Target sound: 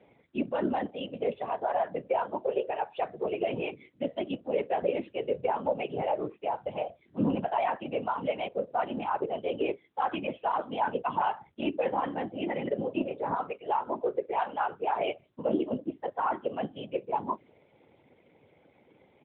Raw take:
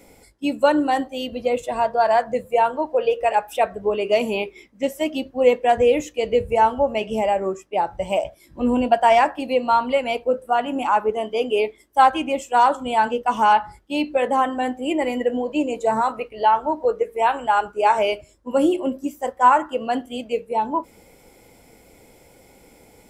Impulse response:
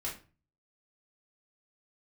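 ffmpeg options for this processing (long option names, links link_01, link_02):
-af "alimiter=limit=-12dB:level=0:latency=1:release=25,atempo=1.2,bandreject=frequency=50:width_type=h:width=6,bandreject=frequency=100:width_type=h:width=6,bandreject=frequency=150:width_type=h:width=6,bandreject=frequency=200:width_type=h:width=6,afftfilt=real='hypot(re,im)*cos(2*PI*random(0))':imag='hypot(re,im)*sin(2*PI*random(1))':win_size=512:overlap=0.75,volume=-2.5dB" -ar 8000 -c:a libopencore_amrnb -b:a 12200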